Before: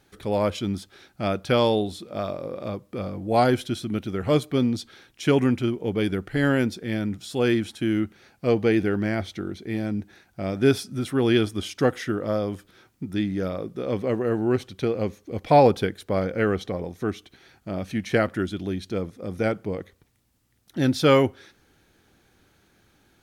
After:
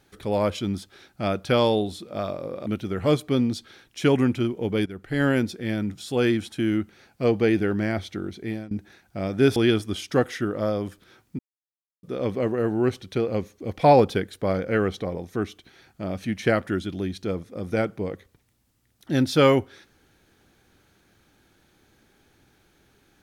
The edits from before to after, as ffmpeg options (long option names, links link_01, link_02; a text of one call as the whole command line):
ffmpeg -i in.wav -filter_complex "[0:a]asplit=7[link_01][link_02][link_03][link_04][link_05][link_06][link_07];[link_01]atrim=end=2.662[link_08];[link_02]atrim=start=3.888:end=6.09,asetpts=PTS-STARTPTS,afade=type=out:start_time=2.198:duration=0.004:curve=hsin:silence=0.16788[link_09];[link_03]atrim=start=6.09:end=9.94,asetpts=PTS-STARTPTS,afade=type=in:duration=0.4:silence=0.16788,afade=type=out:start_time=3.6:duration=0.25:silence=0.0841395[link_10];[link_04]atrim=start=9.94:end=10.792,asetpts=PTS-STARTPTS,afade=type=in:duration=0.004:curve=hsin:silence=0.0841395[link_11];[link_05]atrim=start=11.228:end=13.06,asetpts=PTS-STARTPTS,afade=type=out:start_time=1.828:duration=0.004:curve=hsin[link_12];[link_06]atrim=start=13.06:end=13.7,asetpts=PTS-STARTPTS,volume=0[link_13];[link_07]atrim=start=13.7,asetpts=PTS-STARTPTS,afade=type=in:duration=0.004:curve=hsin[link_14];[link_09][link_10][link_11]concat=n=3:v=0:a=1[link_15];[link_08][link_15]acrossfade=duration=0.004:curve1=hsin:curve2=hsin[link_16];[link_12][link_13][link_14]concat=n=3:v=0:a=1[link_17];[link_16][link_17]acrossfade=duration=0.004:curve1=hsin:curve2=hsin" out.wav